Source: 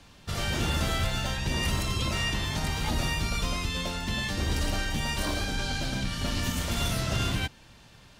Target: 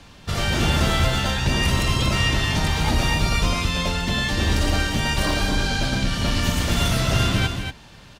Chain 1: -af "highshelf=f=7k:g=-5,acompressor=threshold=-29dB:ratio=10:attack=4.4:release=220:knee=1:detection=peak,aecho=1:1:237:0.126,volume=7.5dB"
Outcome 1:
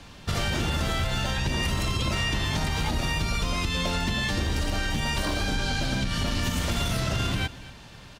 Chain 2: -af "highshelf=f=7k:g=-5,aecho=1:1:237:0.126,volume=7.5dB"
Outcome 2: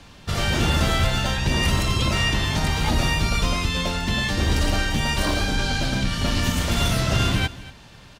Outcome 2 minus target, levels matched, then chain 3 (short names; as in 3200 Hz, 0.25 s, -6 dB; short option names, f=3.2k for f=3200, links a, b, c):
echo-to-direct -11.5 dB
-af "highshelf=f=7k:g=-5,aecho=1:1:237:0.473,volume=7.5dB"